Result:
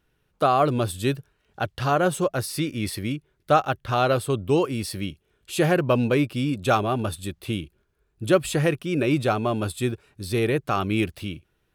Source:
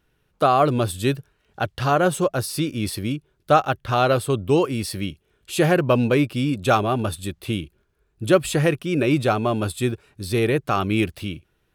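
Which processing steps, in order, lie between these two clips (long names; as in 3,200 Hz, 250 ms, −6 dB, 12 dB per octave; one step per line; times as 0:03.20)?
0:02.35–0:03.51: parametric band 2,000 Hz +6.5 dB 0.35 octaves
level −2.5 dB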